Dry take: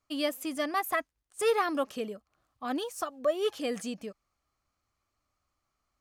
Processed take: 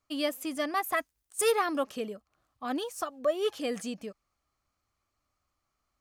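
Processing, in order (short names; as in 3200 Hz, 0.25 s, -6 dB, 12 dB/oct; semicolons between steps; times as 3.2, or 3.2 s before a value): 0.96–1.52 high shelf 5800 Hz +12 dB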